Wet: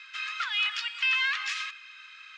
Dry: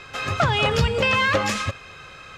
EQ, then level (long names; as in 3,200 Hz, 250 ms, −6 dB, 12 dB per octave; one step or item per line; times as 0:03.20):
Bessel high-pass filter 2,300 Hz, order 8
low-pass filter 3,900 Hz 12 dB per octave
0.0 dB